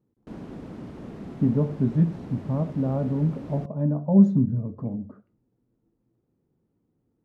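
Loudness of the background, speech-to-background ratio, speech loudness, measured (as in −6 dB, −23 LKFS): −40.0 LKFS, 15.5 dB, −24.5 LKFS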